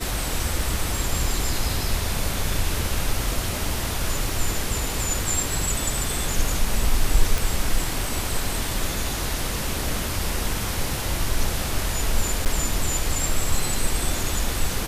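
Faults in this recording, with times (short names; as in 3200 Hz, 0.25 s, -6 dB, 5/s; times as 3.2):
7.38 pop
12.45–12.46 gap 8.6 ms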